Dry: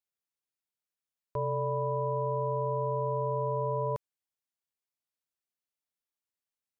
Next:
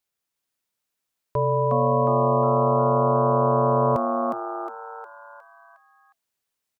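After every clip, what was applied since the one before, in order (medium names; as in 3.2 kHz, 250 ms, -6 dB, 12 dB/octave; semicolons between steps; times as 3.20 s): frequency-shifting echo 360 ms, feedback 46%, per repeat +110 Hz, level -3.5 dB; trim +9 dB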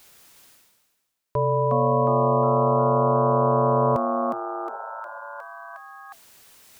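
spectral replace 4.73–5.19 s, 380–890 Hz both; reverse; upward compressor, threshold -28 dBFS; reverse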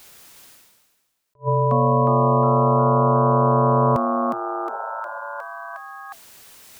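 dynamic bell 560 Hz, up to -5 dB, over -32 dBFS, Q 0.9; attacks held to a fixed rise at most 400 dB/s; trim +5.5 dB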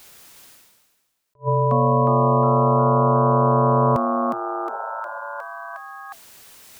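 no audible change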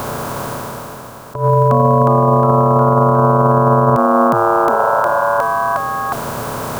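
spectral levelling over time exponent 0.4; loudness maximiser +13 dB; trim -2.5 dB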